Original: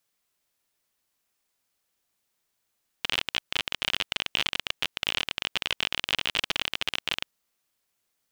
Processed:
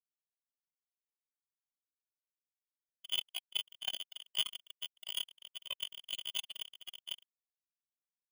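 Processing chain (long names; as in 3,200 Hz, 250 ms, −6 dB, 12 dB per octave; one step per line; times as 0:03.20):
wrap-around overflow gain 20.5 dB
notch comb filter 460 Hz
every bin expanded away from the loudest bin 4 to 1
level +2 dB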